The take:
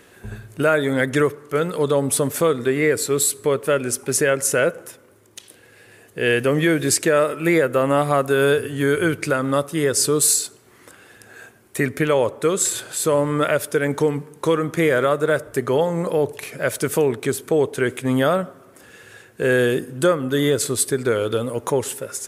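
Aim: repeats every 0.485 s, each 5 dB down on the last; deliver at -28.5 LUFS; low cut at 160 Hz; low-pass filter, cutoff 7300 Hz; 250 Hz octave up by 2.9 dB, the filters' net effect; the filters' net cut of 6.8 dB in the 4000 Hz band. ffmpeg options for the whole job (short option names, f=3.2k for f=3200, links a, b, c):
-af "highpass=160,lowpass=7.3k,equalizer=f=250:t=o:g=4.5,equalizer=f=4k:t=o:g=-8.5,aecho=1:1:485|970|1455|1940|2425|2910|3395:0.562|0.315|0.176|0.0988|0.0553|0.031|0.0173,volume=-10dB"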